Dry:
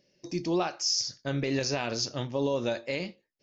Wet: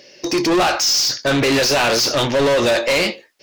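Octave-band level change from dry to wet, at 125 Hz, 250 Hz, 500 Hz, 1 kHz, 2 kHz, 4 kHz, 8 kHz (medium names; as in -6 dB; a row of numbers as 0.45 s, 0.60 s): +7.5 dB, +11.5 dB, +14.0 dB, +16.0 dB, +18.0 dB, +14.5 dB, no reading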